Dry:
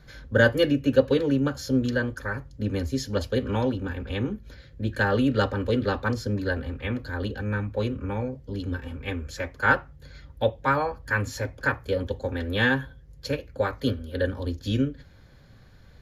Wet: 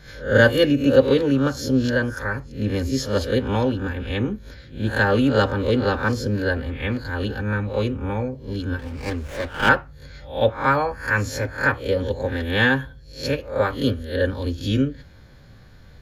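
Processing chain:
peak hold with a rise ahead of every peak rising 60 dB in 0.37 s
0:08.79–0:09.69: windowed peak hold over 9 samples
level +3.5 dB

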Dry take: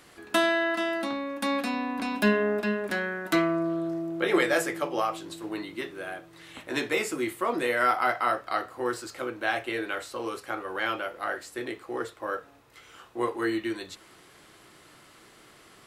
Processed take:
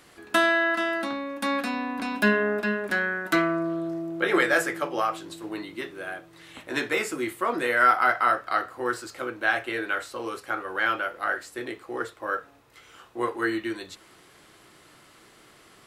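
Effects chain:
dynamic equaliser 1,500 Hz, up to +7 dB, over −42 dBFS, Q 2.2

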